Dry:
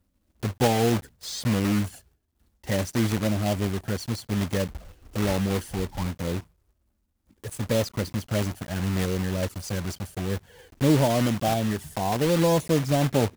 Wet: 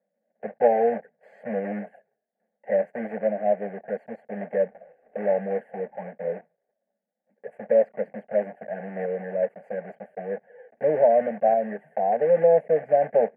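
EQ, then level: elliptic band-pass 240–1700 Hz, stop band 50 dB; static phaser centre 350 Hz, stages 6; static phaser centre 1 kHz, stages 6; +8.5 dB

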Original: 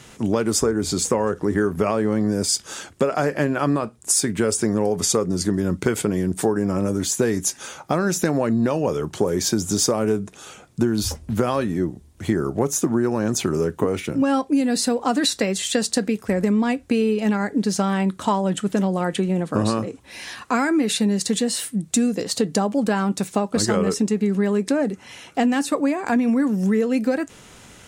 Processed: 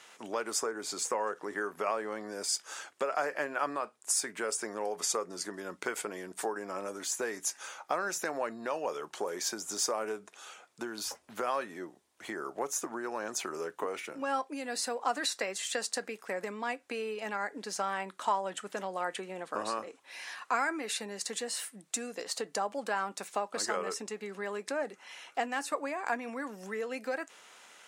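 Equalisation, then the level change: high-pass 730 Hz 12 dB/octave; treble shelf 4.6 kHz -6.5 dB; dynamic bell 3.5 kHz, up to -5 dB, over -44 dBFS, Q 2; -5.0 dB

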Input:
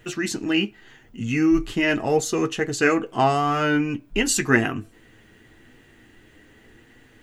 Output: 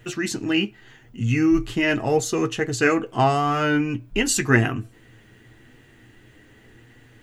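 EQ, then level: peaking EQ 120 Hz +11.5 dB 0.21 oct; 0.0 dB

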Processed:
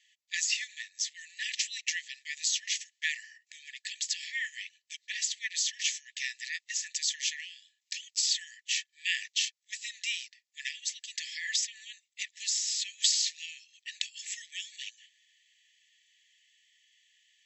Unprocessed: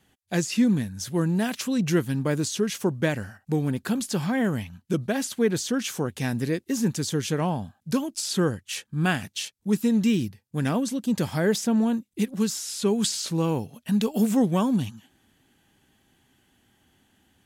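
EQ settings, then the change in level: brick-wall FIR band-pass 1.7–7.9 kHz; +3.0 dB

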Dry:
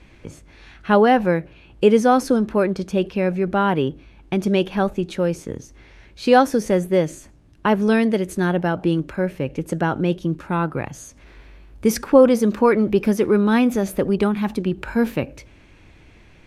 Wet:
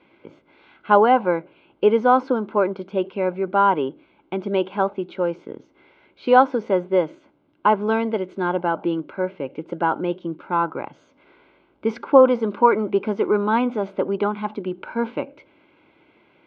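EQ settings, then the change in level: dynamic bell 990 Hz, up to +7 dB, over -34 dBFS, Q 1.7; Butterworth band-stop 1.8 kHz, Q 4.6; cabinet simulation 390–2700 Hz, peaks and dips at 470 Hz -4 dB, 710 Hz -7 dB, 1.2 kHz -6 dB, 1.7 kHz -4 dB, 2.5 kHz -9 dB; +3.0 dB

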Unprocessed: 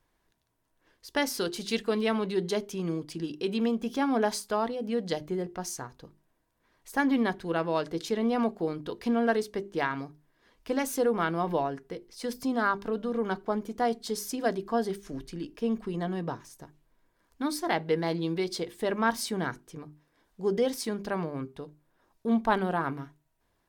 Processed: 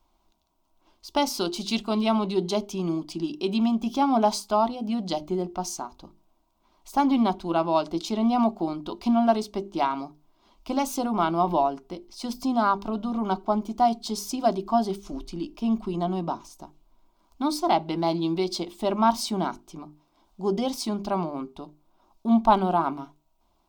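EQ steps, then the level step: peaking EQ 270 Hz -6 dB 0.41 oct; peaking EQ 11 kHz -11.5 dB 1.1 oct; static phaser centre 470 Hz, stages 6; +9.0 dB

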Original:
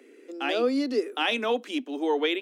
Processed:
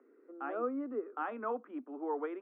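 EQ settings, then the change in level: four-pole ladder low-pass 1.4 kHz, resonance 65%; distance through air 450 m; 0.0 dB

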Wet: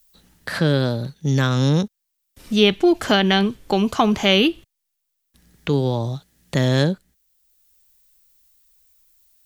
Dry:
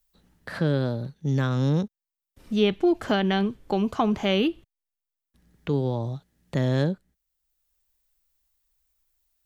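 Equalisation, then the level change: treble shelf 2.2 kHz +10 dB; +5.0 dB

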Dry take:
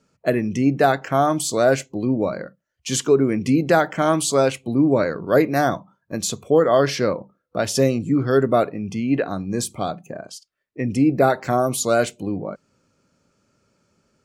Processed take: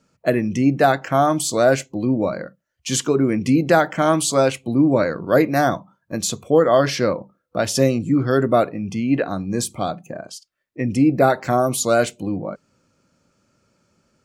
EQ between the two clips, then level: band-stop 420 Hz, Q 12; +1.5 dB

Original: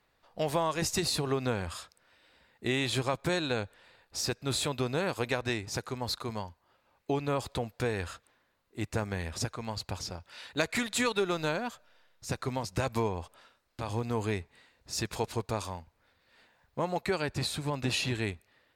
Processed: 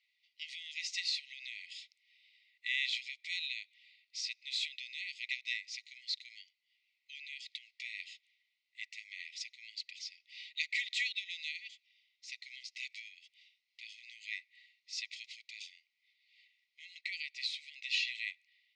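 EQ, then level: brick-wall FIR high-pass 1.9 kHz; low-pass 5.7 kHz 24 dB/octave; treble shelf 3.9 kHz -10 dB; +3.5 dB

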